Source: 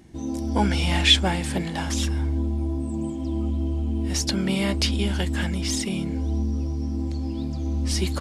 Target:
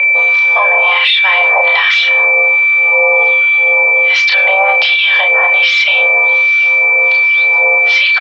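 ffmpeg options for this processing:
ffmpeg -i in.wav -filter_complex "[0:a]asettb=1/sr,asplit=3[link_01][link_02][link_03];[link_01]atrim=end=6.064[link_04];[link_02]atrim=start=6.06:end=7.17,asetpts=PTS-STARTPTS,afade=type=in:duration=0.004:curve=qsin,afade=type=out:start_time=1.106:duration=0.004:curve=qsin,tiltshelf=frequency=1300:gain=-7[link_05];[link_03]atrim=start=7.166[link_06];[link_04][link_05]acrossfade=duration=0.004:curve1=hsin:curve2=qsin[link_07];[link_07][link_06]acrossfade=duration=0.004:curve1=qsin:curve2=hsin,acompressor=threshold=-25dB:ratio=10,afreqshift=-140,acrossover=split=1000[link_08][link_09];[link_08]aeval=exprs='val(0)*(1-1/2+1/2*cos(2*PI*1.3*n/s))':channel_layout=same[link_10];[link_09]aeval=exprs='val(0)*(1-1/2-1/2*cos(2*PI*1.3*n/s))':channel_layout=same[link_11];[link_10][link_11]amix=inputs=2:normalize=0,aeval=exprs='val(0)+0.0141*sin(2*PI*2000*n/s)':channel_layout=same,highpass=frequency=250:width_type=q:width=0.5412,highpass=frequency=250:width_type=q:width=1.307,lowpass=frequency=3200:width_type=q:width=0.5176,lowpass=frequency=3200:width_type=q:width=0.7071,lowpass=frequency=3200:width_type=q:width=1.932,afreqshift=330,asoftclip=type=tanh:threshold=-10.5dB,asplit=2[link_12][link_13];[link_13]adelay=31,volume=-6dB[link_14];[link_12][link_14]amix=inputs=2:normalize=0,asplit=2[link_15][link_16];[link_16]adelay=98,lowpass=frequency=2500:poles=1,volume=-22.5dB,asplit=2[link_17][link_18];[link_18]adelay=98,lowpass=frequency=2500:poles=1,volume=0.39,asplit=2[link_19][link_20];[link_20]adelay=98,lowpass=frequency=2500:poles=1,volume=0.39[link_21];[link_17][link_19][link_21]amix=inputs=3:normalize=0[link_22];[link_15][link_22]amix=inputs=2:normalize=0,crystalizer=i=2:c=0,alimiter=level_in=28dB:limit=-1dB:release=50:level=0:latency=1,volume=-1dB" out.wav

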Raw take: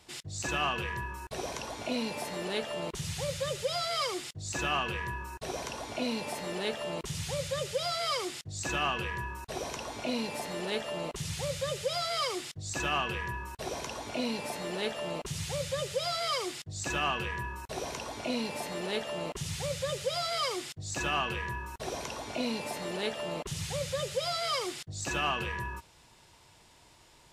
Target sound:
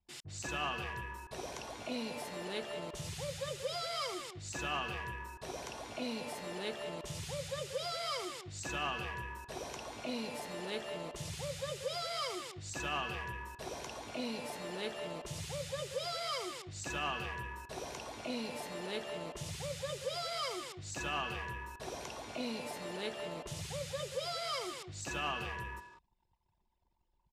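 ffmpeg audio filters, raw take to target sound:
ffmpeg -i in.wav -filter_complex "[0:a]asplit=2[link_01][link_02];[link_02]adelay=190,highpass=300,lowpass=3400,asoftclip=type=hard:threshold=-28dB,volume=-8dB[link_03];[link_01][link_03]amix=inputs=2:normalize=0,anlmdn=0.00158,volume=-6.5dB" out.wav

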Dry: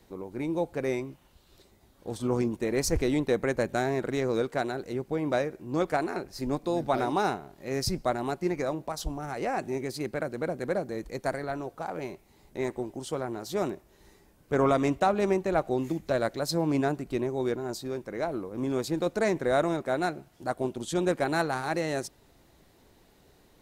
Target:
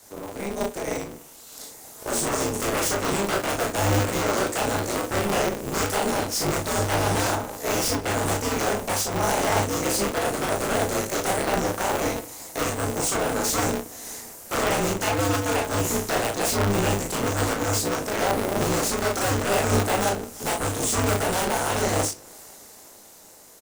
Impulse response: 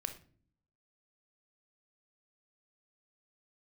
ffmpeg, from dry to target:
-filter_complex "[0:a]highpass=330,acrossover=split=420|2100[link_01][link_02][link_03];[link_01]acompressor=threshold=-42dB:ratio=4[link_04];[link_02]acompressor=threshold=-43dB:ratio=4[link_05];[link_03]acompressor=threshold=-52dB:ratio=4[link_06];[link_04][link_05][link_06]amix=inputs=3:normalize=0,highshelf=frequency=4900:width_type=q:width=1.5:gain=11,dynaudnorm=framelen=150:gausssize=21:maxgain=9.5dB,aeval=exprs='0.0422*(abs(mod(val(0)/0.0422+3,4)-2)-1)':channel_layout=same,flanger=delay=19.5:depth=7:speed=2,asplit=2[link_07][link_08];[link_08]adelay=36,volume=-3dB[link_09];[link_07][link_09]amix=inputs=2:normalize=0,asplit=2[link_10][link_11];[1:a]atrim=start_sample=2205,asetrate=52920,aresample=44100[link_12];[link_11][link_12]afir=irnorm=-1:irlink=0,volume=4.5dB[link_13];[link_10][link_13]amix=inputs=2:normalize=0,aeval=exprs='val(0)*sgn(sin(2*PI*100*n/s))':channel_layout=same,volume=4dB"

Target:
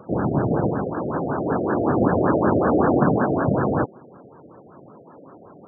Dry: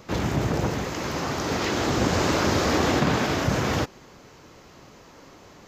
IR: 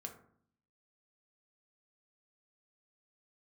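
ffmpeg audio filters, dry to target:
-af "highpass=130,lowpass=5900,afftfilt=real='re*gte(hypot(re,im),0.00398)':imag='im*gte(hypot(re,im),0.00398)':win_size=1024:overlap=0.75,afftfilt=real='re*lt(b*sr/1024,710*pow(1800/710,0.5+0.5*sin(2*PI*5.3*pts/sr)))':imag='im*lt(b*sr/1024,710*pow(1800/710,0.5+0.5*sin(2*PI*5.3*pts/sr)))':win_size=1024:overlap=0.75,volume=5.5dB"

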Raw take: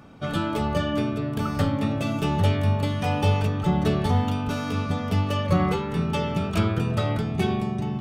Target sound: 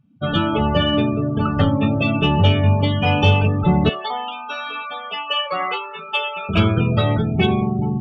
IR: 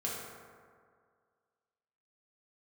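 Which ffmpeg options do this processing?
-filter_complex "[0:a]asettb=1/sr,asplit=3[link_01][link_02][link_03];[link_01]atrim=end=3.894[link_04];[link_02]atrim=start=3.89:end=6.49,asetpts=PTS-STARTPTS,afade=type=in:duration=0.004:curve=qsin,afade=type=out:start_time=2.596:duration=0.004:curve=qsin,highpass=750[link_05];[link_03]atrim=start=6.486[link_06];[link_04][link_05]acrossfade=duration=0.004:curve1=hsin:curve2=qsin[link_07];[link_07][link_06]acrossfade=duration=0.004:curve1=qsin:curve2=hsin,afftdn=noise_reduction=36:noise_floor=-32,equalizer=frequency=2900:width_type=o:width=0.7:gain=10,acontrast=79"

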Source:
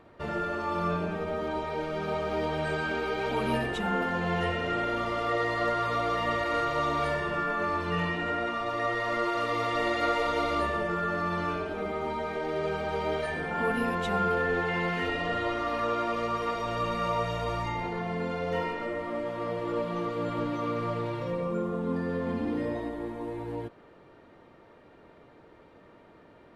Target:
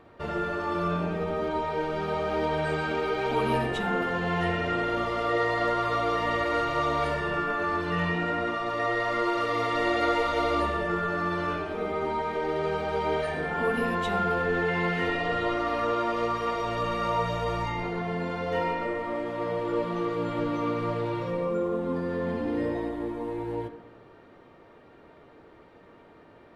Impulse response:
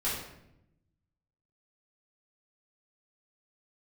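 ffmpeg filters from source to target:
-filter_complex "[0:a]asplit=2[link_01][link_02];[1:a]atrim=start_sample=2205,lowpass=5600,lowshelf=frequency=150:gain=-9[link_03];[link_02][link_03]afir=irnorm=-1:irlink=0,volume=-12dB[link_04];[link_01][link_04]amix=inputs=2:normalize=0"

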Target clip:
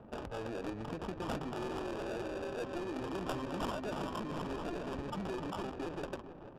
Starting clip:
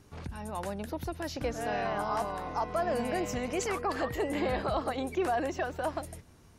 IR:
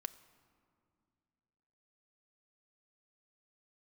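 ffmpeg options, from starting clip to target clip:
-filter_complex "[0:a]asplit=2[link_01][link_02];[link_02]highpass=frequency=720:poles=1,volume=24dB,asoftclip=type=tanh:threshold=-19.5dB[link_03];[link_01][link_03]amix=inputs=2:normalize=0,lowpass=frequency=6300:poles=1,volume=-6dB,lowshelf=frequency=190:gain=-10.5,bandreject=frequency=259.4:width_type=h:width=4,bandreject=frequency=518.8:width_type=h:width=4,bandreject=frequency=778.2:width_type=h:width=4,bandreject=frequency=1037.6:width_type=h:width=4,bandreject=frequency=1297:width_type=h:width=4,bandreject=frequency=1556.4:width_type=h:width=4,bandreject=frequency=1815.8:width_type=h:width=4,acrossover=split=130|3500[link_04][link_05][link_06];[link_05]acompressor=threshold=-35dB:ratio=8[link_07];[link_04][link_07][link_06]amix=inputs=3:normalize=0,asetrate=23361,aresample=44100,atempo=1.88775,asplit=2[link_08][link_09];[link_09]aecho=0:1:441|882|1323|1764:0.282|0.107|0.0407|0.0155[link_10];[link_08][link_10]amix=inputs=2:normalize=0,acrusher=samples=21:mix=1:aa=0.000001,highshelf=frequency=4700:gain=6.5,adynamicsmooth=sensitivity=5.5:basefreq=580,volume=-2.5dB" -ar 32000 -c:a libvorbis -b:a 128k

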